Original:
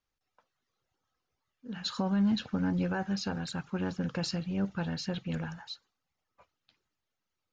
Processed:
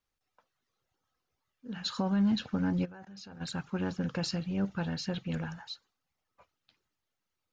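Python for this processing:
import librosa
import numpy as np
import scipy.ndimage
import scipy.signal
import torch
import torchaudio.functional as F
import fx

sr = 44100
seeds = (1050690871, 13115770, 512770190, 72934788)

y = fx.level_steps(x, sr, step_db=24, at=(2.84, 3.4), fade=0.02)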